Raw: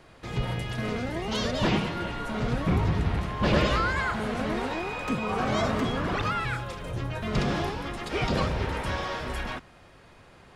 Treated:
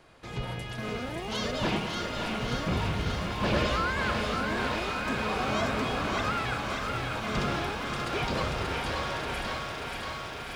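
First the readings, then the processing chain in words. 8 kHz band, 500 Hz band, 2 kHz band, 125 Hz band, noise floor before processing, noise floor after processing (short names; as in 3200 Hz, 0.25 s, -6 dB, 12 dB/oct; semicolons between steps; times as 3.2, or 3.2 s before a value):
+1.5 dB, -2.0 dB, 0.0 dB, -4.5 dB, -53 dBFS, -39 dBFS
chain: low shelf 330 Hz -4 dB; notch 1900 Hz, Q 22; on a send: thinning echo 0.584 s, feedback 77%, high-pass 840 Hz, level -4 dB; on the sum: lo-fi delay 0.547 s, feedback 80%, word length 9-bit, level -9 dB; gain -2.5 dB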